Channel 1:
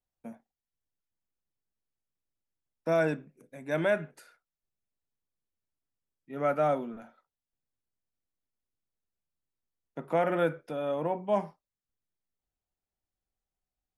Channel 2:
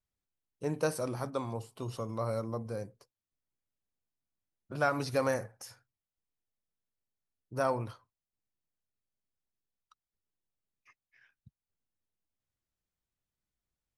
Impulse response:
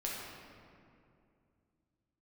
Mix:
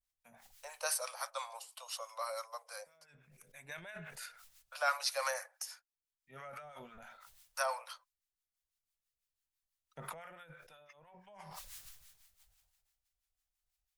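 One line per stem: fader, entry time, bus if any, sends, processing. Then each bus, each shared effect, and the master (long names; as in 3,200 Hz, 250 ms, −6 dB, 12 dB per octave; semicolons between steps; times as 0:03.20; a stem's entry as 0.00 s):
+2.5 dB, 0.00 s, no send, compressor whose output falls as the input rises −35 dBFS, ratio −1; pitch vibrato 0.58 Hz 43 cents; level that may fall only so fast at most 31 dB per second; automatic ducking −16 dB, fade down 0.70 s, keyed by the second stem
−1.0 dB, 0.00 s, no send, automatic gain control gain up to 12.5 dB; Butterworth high-pass 510 Hz 96 dB per octave; noise gate −48 dBFS, range −19 dB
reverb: not used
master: two-band tremolo in antiphase 6 Hz, depth 70%, crossover 820 Hz; guitar amp tone stack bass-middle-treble 10-0-10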